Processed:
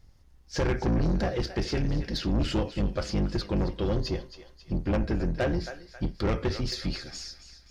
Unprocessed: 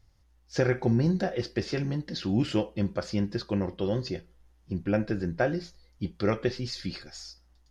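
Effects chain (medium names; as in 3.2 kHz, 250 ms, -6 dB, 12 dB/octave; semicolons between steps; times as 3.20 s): octave divider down 2 oct, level +1 dB; thinning echo 270 ms, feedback 51%, high-pass 940 Hz, level -12.5 dB; saturation -25 dBFS, distortion -9 dB; trim +3.5 dB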